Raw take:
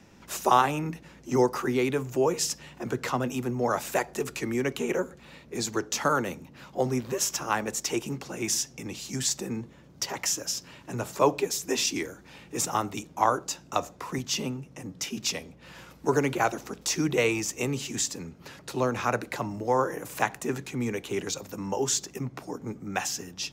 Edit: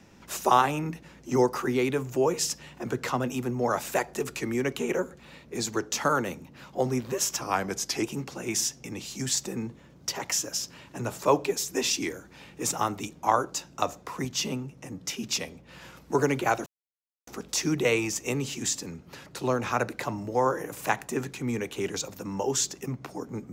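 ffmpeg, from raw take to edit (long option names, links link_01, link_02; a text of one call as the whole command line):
ffmpeg -i in.wav -filter_complex "[0:a]asplit=4[link_01][link_02][link_03][link_04];[link_01]atrim=end=7.414[link_05];[link_02]atrim=start=7.41:end=7.97,asetpts=PTS-STARTPTS,asetrate=39690,aresample=44100[link_06];[link_03]atrim=start=7.966:end=16.6,asetpts=PTS-STARTPTS,afade=type=out:start_time=8.63:duration=0.004:curve=hsin,apad=pad_dur=0.61[link_07];[link_04]atrim=start=16.6,asetpts=PTS-STARTPTS,afade=type=in:duration=0.004:curve=hsin[link_08];[link_05][link_06]acrossfade=duration=0.004:curve1=hsin:curve2=hsin[link_09];[link_07][link_08]concat=n=2:v=0:a=1[link_10];[link_09][link_10]acrossfade=duration=0.004:curve1=hsin:curve2=hsin" out.wav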